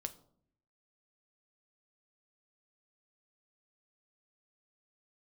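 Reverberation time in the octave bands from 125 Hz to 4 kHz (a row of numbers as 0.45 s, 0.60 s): 0.95 s, 0.90 s, 0.65 s, 0.55 s, 0.35 s, 0.35 s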